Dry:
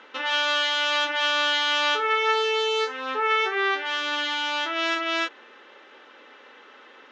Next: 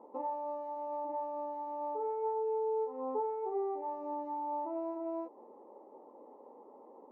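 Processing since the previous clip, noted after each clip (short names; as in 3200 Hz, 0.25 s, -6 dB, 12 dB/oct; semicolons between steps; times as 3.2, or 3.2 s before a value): compressor, threshold -26 dBFS, peak gain reduction 10 dB; elliptic low-pass 940 Hz, stop band 40 dB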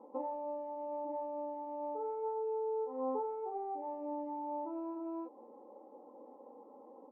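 high shelf 2000 Hz -11 dB; comb 3.8 ms, depth 60%; gain -1 dB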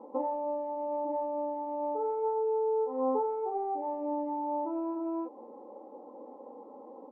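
air absorption 180 m; gain +7.5 dB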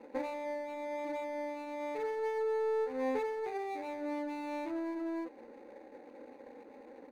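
median filter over 41 samples; gain -2 dB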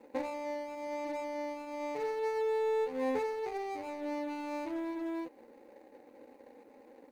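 G.711 law mismatch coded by A; in parallel at -5.5 dB: one-sided clip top -39.5 dBFS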